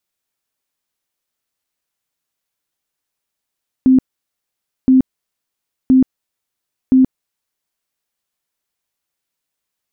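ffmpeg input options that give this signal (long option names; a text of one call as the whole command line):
ffmpeg -f lavfi -i "aevalsrc='0.501*sin(2*PI*260*mod(t,1.02))*lt(mod(t,1.02),33/260)':duration=4.08:sample_rate=44100" out.wav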